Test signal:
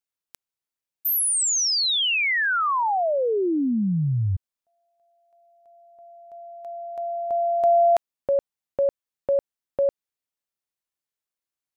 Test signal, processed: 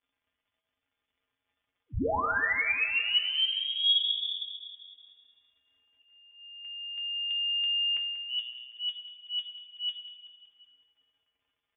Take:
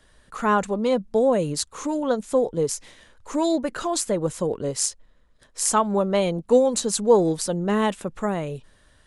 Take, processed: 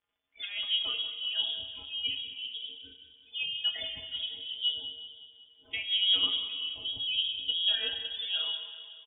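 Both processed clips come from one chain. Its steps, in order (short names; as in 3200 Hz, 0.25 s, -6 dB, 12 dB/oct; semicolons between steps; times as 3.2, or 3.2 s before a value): gate -47 dBFS, range -14 dB; spectral noise reduction 28 dB; notches 60/120/180/240/300/360/420 Hz; in parallel at +2 dB: limiter -16 dBFS; on the sum: compressor 6:1, threshold -17 dBFS; auto swell 0.131 s; crackle 230/s -51 dBFS; resonator 190 Hz, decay 0.16 s, harmonics all, mix 90%; feedback echo 0.188 s, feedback 55%, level -12 dB; plate-style reverb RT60 1.6 s, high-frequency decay 0.75×, DRR 6.5 dB; inverted band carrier 3500 Hz; gain -2 dB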